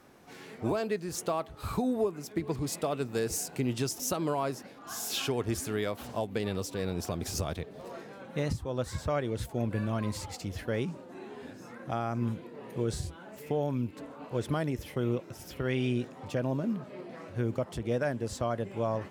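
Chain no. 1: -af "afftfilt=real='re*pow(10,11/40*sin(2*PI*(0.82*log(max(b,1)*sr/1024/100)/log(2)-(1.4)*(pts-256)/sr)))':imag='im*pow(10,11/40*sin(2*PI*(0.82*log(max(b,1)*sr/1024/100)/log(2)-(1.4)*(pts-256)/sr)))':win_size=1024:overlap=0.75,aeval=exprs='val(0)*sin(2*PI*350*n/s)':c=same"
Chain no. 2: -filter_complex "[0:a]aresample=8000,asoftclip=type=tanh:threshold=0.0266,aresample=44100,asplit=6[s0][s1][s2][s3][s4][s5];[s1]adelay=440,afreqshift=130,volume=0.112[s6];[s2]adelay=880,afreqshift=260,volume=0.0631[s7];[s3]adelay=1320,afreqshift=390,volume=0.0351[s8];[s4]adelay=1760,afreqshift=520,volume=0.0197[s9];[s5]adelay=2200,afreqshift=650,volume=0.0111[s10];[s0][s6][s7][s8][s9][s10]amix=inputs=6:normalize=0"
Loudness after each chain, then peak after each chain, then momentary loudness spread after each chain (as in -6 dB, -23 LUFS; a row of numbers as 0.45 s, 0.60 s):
-35.0 LUFS, -38.5 LUFS; -16.0 dBFS, -28.0 dBFS; 12 LU, 8 LU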